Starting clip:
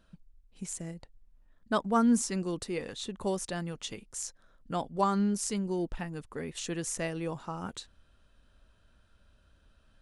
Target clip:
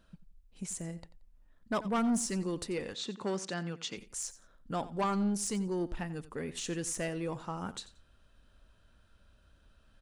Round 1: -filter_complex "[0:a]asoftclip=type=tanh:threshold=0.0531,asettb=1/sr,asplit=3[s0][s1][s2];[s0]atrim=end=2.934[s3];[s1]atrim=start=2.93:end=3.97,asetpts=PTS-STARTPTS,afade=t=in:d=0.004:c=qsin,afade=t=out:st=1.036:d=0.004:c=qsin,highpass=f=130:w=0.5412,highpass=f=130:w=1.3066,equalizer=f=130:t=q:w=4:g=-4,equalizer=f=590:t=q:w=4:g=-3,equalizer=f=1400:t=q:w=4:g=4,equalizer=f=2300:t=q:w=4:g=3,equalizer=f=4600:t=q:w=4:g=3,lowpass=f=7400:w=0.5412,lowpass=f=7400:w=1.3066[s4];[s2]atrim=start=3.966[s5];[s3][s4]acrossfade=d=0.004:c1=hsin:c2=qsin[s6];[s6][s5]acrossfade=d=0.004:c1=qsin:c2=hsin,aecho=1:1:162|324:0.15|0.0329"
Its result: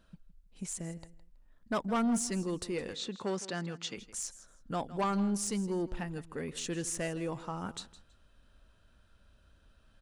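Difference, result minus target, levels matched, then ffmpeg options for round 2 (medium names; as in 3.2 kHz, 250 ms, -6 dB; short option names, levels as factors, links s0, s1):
echo 73 ms late
-filter_complex "[0:a]asoftclip=type=tanh:threshold=0.0531,asettb=1/sr,asplit=3[s0][s1][s2];[s0]atrim=end=2.934[s3];[s1]atrim=start=2.93:end=3.97,asetpts=PTS-STARTPTS,afade=t=in:d=0.004:c=qsin,afade=t=out:st=1.036:d=0.004:c=qsin,highpass=f=130:w=0.5412,highpass=f=130:w=1.3066,equalizer=f=130:t=q:w=4:g=-4,equalizer=f=590:t=q:w=4:g=-3,equalizer=f=1400:t=q:w=4:g=4,equalizer=f=2300:t=q:w=4:g=3,equalizer=f=4600:t=q:w=4:g=3,lowpass=f=7400:w=0.5412,lowpass=f=7400:w=1.3066[s4];[s2]atrim=start=3.966[s5];[s3][s4]acrossfade=d=0.004:c1=hsin:c2=qsin[s6];[s6][s5]acrossfade=d=0.004:c1=qsin:c2=hsin,aecho=1:1:89|178:0.15|0.0329"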